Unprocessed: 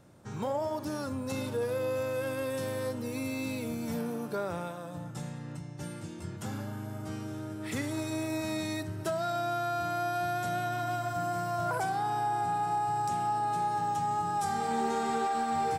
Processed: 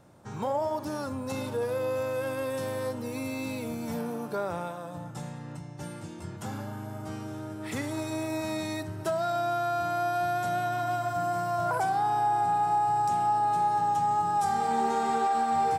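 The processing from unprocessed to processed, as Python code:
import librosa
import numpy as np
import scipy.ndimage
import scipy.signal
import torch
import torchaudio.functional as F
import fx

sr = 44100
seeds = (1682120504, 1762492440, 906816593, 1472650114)

y = fx.peak_eq(x, sr, hz=850.0, db=5.0, octaves=1.1)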